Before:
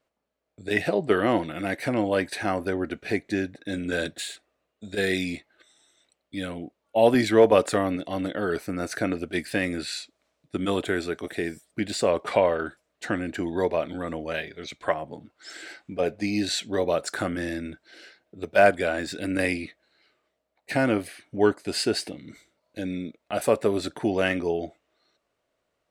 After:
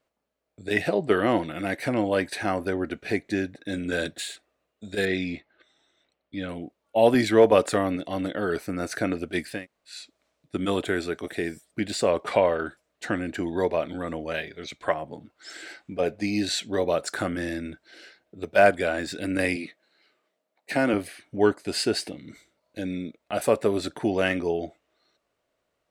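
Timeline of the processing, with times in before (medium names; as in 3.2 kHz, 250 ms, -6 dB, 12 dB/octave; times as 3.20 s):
5.05–6.49 s: distance through air 160 m
9.55–9.97 s: room tone, crossfade 0.24 s
19.56–20.94 s: high-pass 150 Hz 24 dB/octave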